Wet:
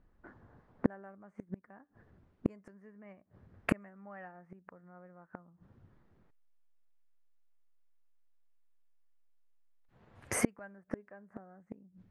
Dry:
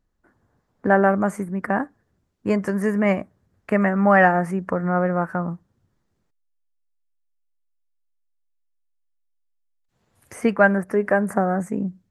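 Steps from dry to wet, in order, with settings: flipped gate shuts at -19 dBFS, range -40 dB; low-pass opened by the level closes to 2000 Hz, open at -41.5 dBFS; gain +6 dB

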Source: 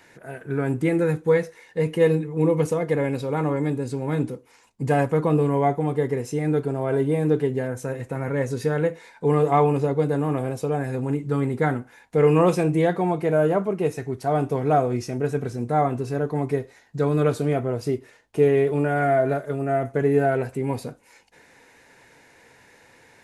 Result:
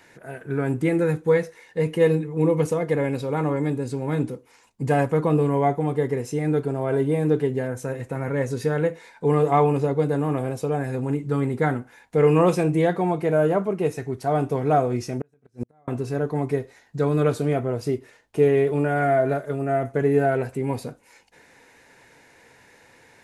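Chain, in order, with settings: 15.03–15.88 flipped gate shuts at -17 dBFS, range -39 dB

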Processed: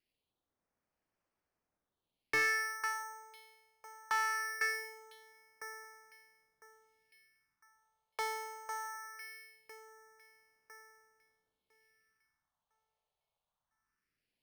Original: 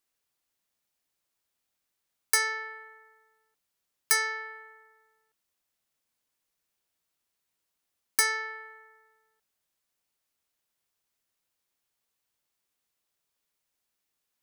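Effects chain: echo with dull and thin repeats by turns 0.502 s, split 2300 Hz, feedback 56%, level -7 dB; phaser stages 4, 0.21 Hz, lowest notch 280–4200 Hz; careless resampling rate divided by 6×, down filtered, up hold; slew limiter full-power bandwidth 73 Hz; gain +2.5 dB

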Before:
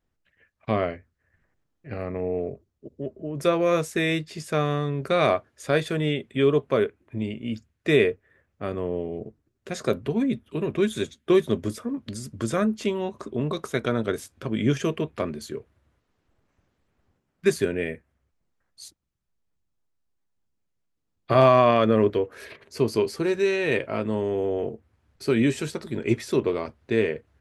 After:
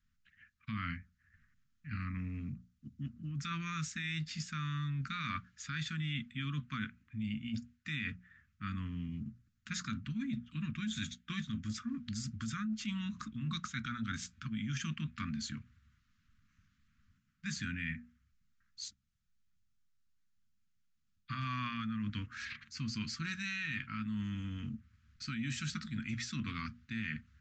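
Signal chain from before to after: elliptic band-stop 230–1300 Hz, stop band 40 dB; limiter -23.5 dBFS, peak gain reduction 10 dB; notches 60/120/180/240 Hz; reverse; compressor, threshold -36 dBFS, peak gain reduction 9.5 dB; reverse; downsampling 16000 Hz; gain +1 dB

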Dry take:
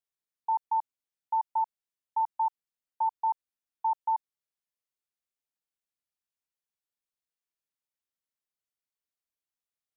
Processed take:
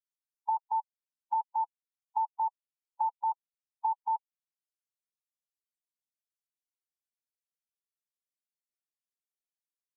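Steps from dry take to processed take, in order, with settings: per-bin expansion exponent 3; treble ducked by the level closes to 730 Hz, closed at -30.5 dBFS; gain +3.5 dB

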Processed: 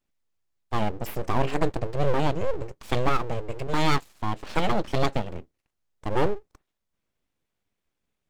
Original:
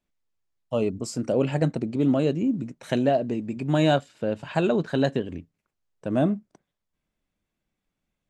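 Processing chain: 3.67–4.34 HPF 220 Hz 12 dB/oct; full-wave rectifier; gain +1.5 dB

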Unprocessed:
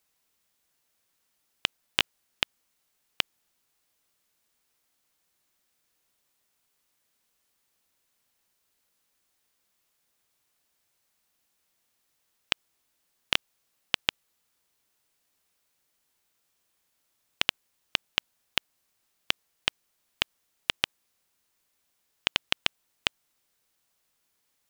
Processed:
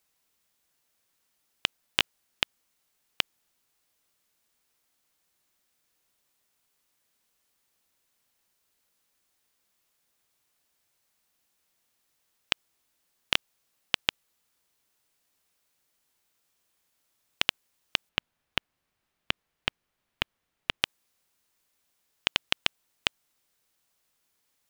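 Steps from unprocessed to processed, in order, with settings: 18.09–20.82 tone controls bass +5 dB, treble -11 dB

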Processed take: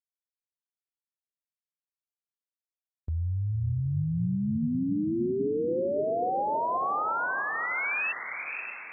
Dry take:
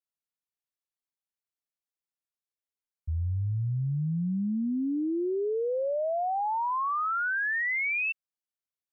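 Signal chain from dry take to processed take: on a send: diffused feedback echo 0.563 s, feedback 45%, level -6.5 dB; on the sum: gate with hold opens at -31 dBFS; bell 1800 Hz -4.5 dB 0.53 oct

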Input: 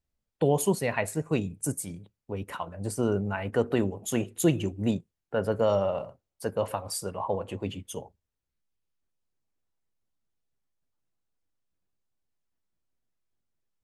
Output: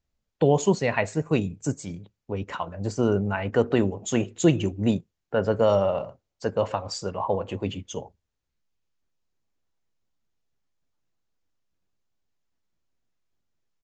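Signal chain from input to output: downsampling 16000 Hz; gain +4 dB

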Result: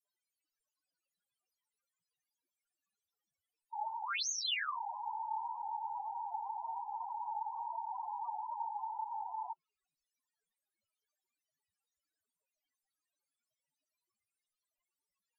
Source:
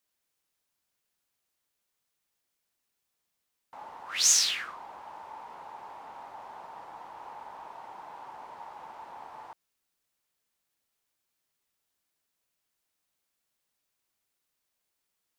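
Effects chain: treble ducked by the level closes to 2700 Hz; loudest bins only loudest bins 4; gain +8.5 dB

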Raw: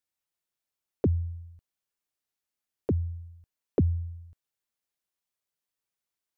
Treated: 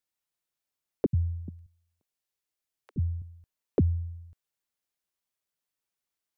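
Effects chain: 1.06–3.22 three bands offset in time highs, lows, mids 70/420 ms, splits 210/1200 Hz

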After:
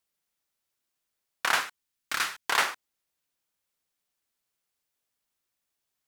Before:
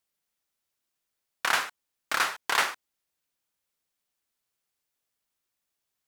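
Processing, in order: 1.6–2.48 bell 630 Hz -4 dB -> -12 dB 1.9 oct

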